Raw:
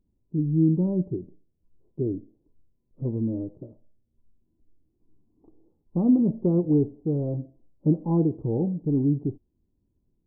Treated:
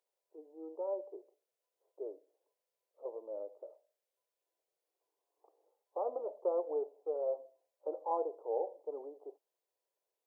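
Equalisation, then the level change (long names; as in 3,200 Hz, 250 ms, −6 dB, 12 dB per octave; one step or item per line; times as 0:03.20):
Butterworth high-pass 500 Hz 48 dB per octave
+3.0 dB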